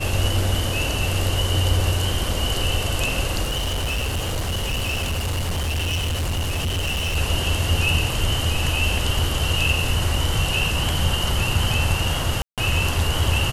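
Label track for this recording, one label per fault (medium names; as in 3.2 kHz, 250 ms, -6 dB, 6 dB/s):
3.430000	7.170000	clipped -20.5 dBFS
12.420000	12.580000	dropout 157 ms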